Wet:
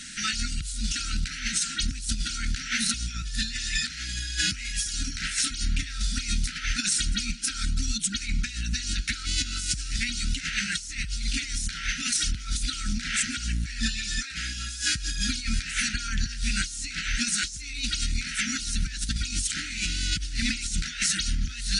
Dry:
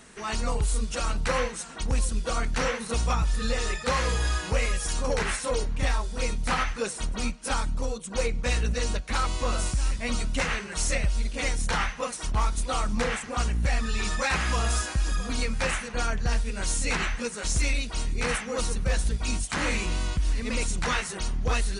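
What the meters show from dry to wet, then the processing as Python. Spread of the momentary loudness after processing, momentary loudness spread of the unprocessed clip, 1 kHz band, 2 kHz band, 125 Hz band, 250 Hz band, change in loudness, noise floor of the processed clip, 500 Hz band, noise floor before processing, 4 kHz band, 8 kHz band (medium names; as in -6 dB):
5 LU, 4 LU, -12.0 dB, 0.0 dB, -4.0 dB, -1.5 dB, +0.5 dB, -37 dBFS, under -30 dB, -38 dBFS, +6.5 dB, +5.0 dB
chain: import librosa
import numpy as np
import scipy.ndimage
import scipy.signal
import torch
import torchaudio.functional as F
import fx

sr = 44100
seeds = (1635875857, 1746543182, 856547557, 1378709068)

y = fx.peak_eq(x, sr, hz=4800.0, db=13.0, octaves=2.1)
y = fx.over_compress(y, sr, threshold_db=-27.0, ratio=-0.5)
y = fx.brickwall_bandstop(y, sr, low_hz=330.0, high_hz=1300.0)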